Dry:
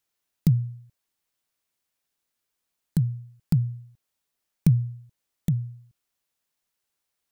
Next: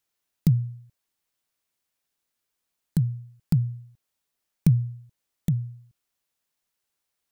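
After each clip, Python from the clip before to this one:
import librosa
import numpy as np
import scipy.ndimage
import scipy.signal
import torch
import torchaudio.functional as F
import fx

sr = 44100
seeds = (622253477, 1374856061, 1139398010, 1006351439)

y = x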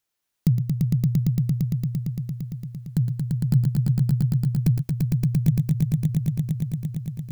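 y = fx.echo_swell(x, sr, ms=114, loudest=5, wet_db=-3)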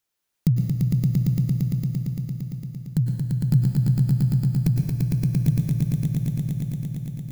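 y = fx.rev_plate(x, sr, seeds[0], rt60_s=1.4, hf_ratio=0.9, predelay_ms=90, drr_db=5.0)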